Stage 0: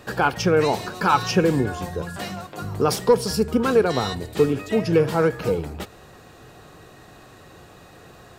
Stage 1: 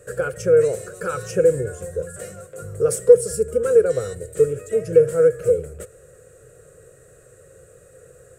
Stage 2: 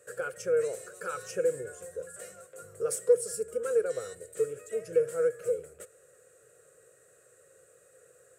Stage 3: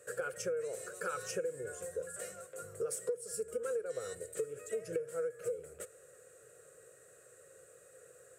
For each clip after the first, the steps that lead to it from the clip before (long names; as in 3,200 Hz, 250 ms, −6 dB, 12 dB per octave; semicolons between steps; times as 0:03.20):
drawn EQ curve 140 Hz 0 dB, 270 Hz −17 dB, 510 Hz +12 dB, 870 Hz −26 dB, 1,400 Hz −2 dB, 3,600 Hz −16 dB, 5,100 Hz −12 dB, 8,100 Hz +13 dB, 14,000 Hz −3 dB; level −3 dB
high-pass filter 690 Hz 6 dB per octave; level −7 dB
downward compressor 16 to 1, threshold −34 dBFS, peak gain reduction 18 dB; level +1 dB